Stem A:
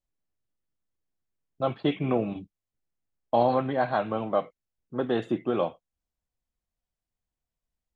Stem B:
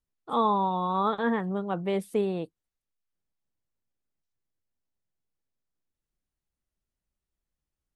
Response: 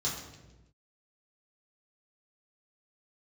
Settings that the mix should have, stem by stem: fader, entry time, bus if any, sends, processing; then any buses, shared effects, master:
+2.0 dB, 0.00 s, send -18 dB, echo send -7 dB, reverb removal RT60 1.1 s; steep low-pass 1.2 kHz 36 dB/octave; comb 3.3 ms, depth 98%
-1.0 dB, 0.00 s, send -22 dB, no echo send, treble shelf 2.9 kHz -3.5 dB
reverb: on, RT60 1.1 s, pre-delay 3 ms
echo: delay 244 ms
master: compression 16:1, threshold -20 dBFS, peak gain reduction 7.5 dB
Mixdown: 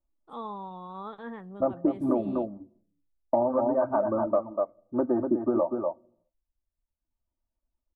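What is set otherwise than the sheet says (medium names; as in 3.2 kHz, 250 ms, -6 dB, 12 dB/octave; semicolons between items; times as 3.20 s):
stem B -1.0 dB -> -13.0 dB; reverb return -9.5 dB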